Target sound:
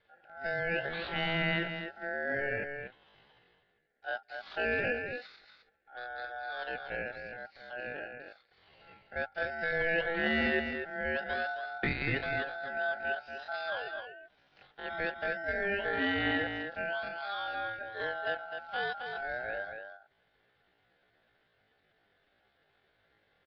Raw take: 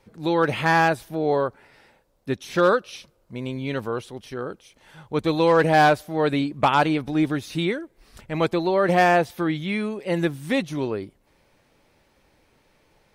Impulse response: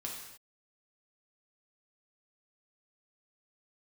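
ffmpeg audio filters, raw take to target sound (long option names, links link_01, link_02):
-filter_complex "[0:a]acompressor=threshold=-28dB:ratio=1.5,highpass=frequency=170:width_type=q:width=0.5412,highpass=frequency=170:width_type=q:width=1.307,lowpass=frequency=3300:width_type=q:width=0.5176,lowpass=frequency=3300:width_type=q:width=0.7071,lowpass=frequency=3300:width_type=q:width=1.932,afreqshift=110,aeval=exprs='val(0)*sin(2*PI*1100*n/s)':channel_layout=same,asplit=2[link_01][link_02];[link_02]adelay=139.9,volume=-6dB,highshelf=frequency=4000:gain=-3.15[link_03];[link_01][link_03]amix=inputs=2:normalize=0,atempo=0.56,volume=-6dB"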